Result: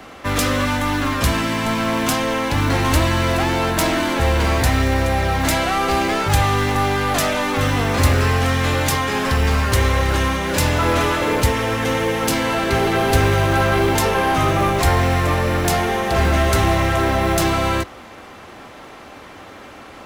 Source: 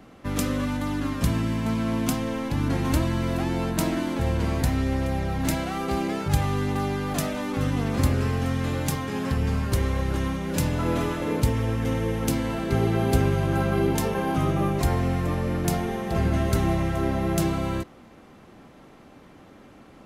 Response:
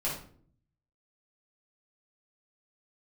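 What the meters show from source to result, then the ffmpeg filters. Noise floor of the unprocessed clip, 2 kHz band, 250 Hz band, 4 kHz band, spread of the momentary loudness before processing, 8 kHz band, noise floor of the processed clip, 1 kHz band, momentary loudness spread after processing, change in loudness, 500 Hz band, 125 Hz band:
−50 dBFS, +13.5 dB, +3.5 dB, +13.0 dB, 4 LU, +10.0 dB, −39 dBFS, +12.0 dB, 3 LU, +7.5 dB, +8.5 dB, +5.0 dB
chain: -filter_complex "[0:a]asplit=2[link_01][link_02];[link_02]highpass=frequency=720:poles=1,volume=22dB,asoftclip=type=tanh:threshold=-7.5dB[link_03];[link_01][link_03]amix=inputs=2:normalize=0,lowpass=frequency=7900:poles=1,volume=-6dB,lowshelf=frequency=120:width_type=q:width=1.5:gain=8.5,bandreject=frequency=56:width_type=h:width=4,bandreject=frequency=112:width_type=h:width=4,acrossover=split=290|4900[link_04][link_05][link_06];[link_04]acrusher=samples=23:mix=1:aa=0.000001[link_07];[link_07][link_05][link_06]amix=inputs=3:normalize=0"

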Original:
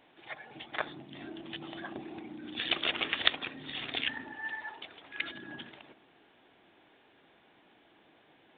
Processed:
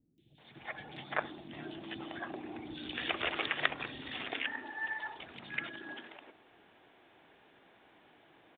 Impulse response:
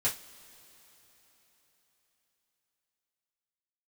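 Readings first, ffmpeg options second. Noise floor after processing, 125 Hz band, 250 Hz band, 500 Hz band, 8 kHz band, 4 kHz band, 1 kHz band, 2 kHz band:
−64 dBFS, +0.5 dB, −1.0 dB, +0.5 dB, can't be measured, −7.0 dB, +1.5 dB, −0.5 dB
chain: -filter_complex "[0:a]acrossover=split=2900[link_01][link_02];[link_02]acompressor=threshold=-49dB:ratio=4:attack=1:release=60[link_03];[link_01][link_03]amix=inputs=2:normalize=0,acrossover=split=250|3700[link_04][link_05][link_06];[link_06]adelay=180[link_07];[link_05]adelay=380[link_08];[link_04][link_08][link_07]amix=inputs=3:normalize=0,volume=1.5dB"

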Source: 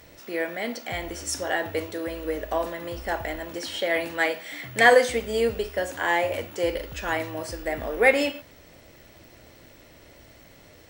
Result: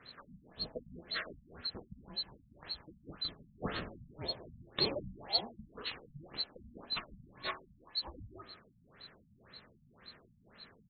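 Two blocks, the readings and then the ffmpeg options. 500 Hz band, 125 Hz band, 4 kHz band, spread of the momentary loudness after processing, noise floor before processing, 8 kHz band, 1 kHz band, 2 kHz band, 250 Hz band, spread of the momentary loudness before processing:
−22.5 dB, −9.0 dB, −2.5 dB, 22 LU, −52 dBFS, below −40 dB, −20.0 dB, −22.5 dB, −15.5 dB, 13 LU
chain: -filter_complex "[0:a]afftfilt=real='real(if(lt(b,736),b+184*(1-2*mod(floor(b/184),2)),b),0)':imag='imag(if(lt(b,736),b+184*(1-2*mod(floor(b/184),2)),b),0)':win_size=2048:overlap=0.75,asplit=2[link_01][link_02];[link_02]adelay=157,lowpass=frequency=2200:poles=1,volume=-12dB,asplit=2[link_03][link_04];[link_04]adelay=157,lowpass=frequency=2200:poles=1,volume=0.2,asplit=2[link_05][link_06];[link_06]adelay=157,lowpass=frequency=2200:poles=1,volume=0.2[link_07];[link_01][link_03][link_05][link_07]amix=inputs=4:normalize=0,afftfilt=real='re*lt(b*sr/1024,220*pow(4400/220,0.5+0.5*sin(2*PI*1.9*pts/sr)))':imag='im*lt(b*sr/1024,220*pow(4400/220,0.5+0.5*sin(2*PI*1.9*pts/sr)))':win_size=1024:overlap=0.75,volume=3.5dB"

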